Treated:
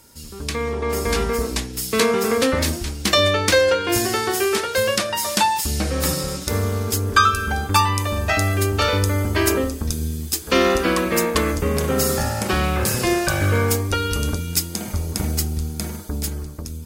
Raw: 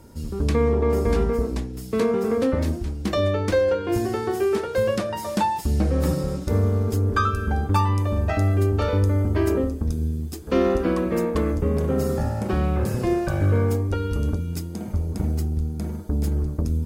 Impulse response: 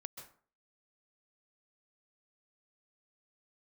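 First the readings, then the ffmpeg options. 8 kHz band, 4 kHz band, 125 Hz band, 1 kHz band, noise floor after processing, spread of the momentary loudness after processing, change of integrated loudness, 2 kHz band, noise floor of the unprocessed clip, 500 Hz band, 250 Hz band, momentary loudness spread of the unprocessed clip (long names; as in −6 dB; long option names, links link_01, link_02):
+17.0 dB, +15.5 dB, −1.5 dB, +6.0 dB, −33 dBFS, 9 LU, +3.0 dB, +11.0 dB, −33 dBFS, +1.5 dB, 0.0 dB, 6 LU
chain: -af "tiltshelf=frequency=1200:gain=-9.5,dynaudnorm=framelen=140:gausssize=13:maxgain=10dB"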